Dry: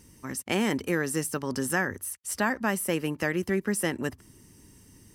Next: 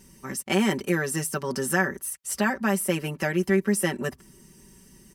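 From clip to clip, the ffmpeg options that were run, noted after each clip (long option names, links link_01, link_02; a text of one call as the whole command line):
ffmpeg -i in.wav -af "aecho=1:1:5.2:0.89" out.wav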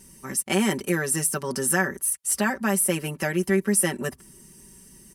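ffmpeg -i in.wav -af "equalizer=frequency=10000:width_type=o:width=0.79:gain=9" out.wav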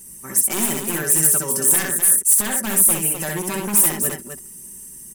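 ffmpeg -i in.wav -af "aeval=exprs='0.106*(abs(mod(val(0)/0.106+3,4)-2)-1)':channel_layout=same,aecho=1:1:63|256:0.668|0.447,aexciter=amount=5.2:drive=2.8:freq=6800,volume=-1dB" out.wav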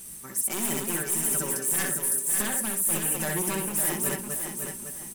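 ffmpeg -i in.wav -af "areverse,acompressor=threshold=-23dB:ratio=5,areverse,acrusher=bits=7:mix=0:aa=0.000001,aecho=1:1:557|1114|1671|2228:0.473|0.147|0.0455|0.0141,volume=-2dB" out.wav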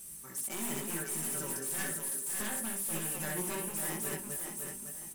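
ffmpeg -i in.wav -filter_complex "[0:a]acrossover=split=5000[link_01][link_02];[link_01]flanger=delay=18:depth=5.1:speed=0.99[link_03];[link_02]asoftclip=type=tanh:threshold=-29.5dB[link_04];[link_03][link_04]amix=inputs=2:normalize=0,volume=-4.5dB" out.wav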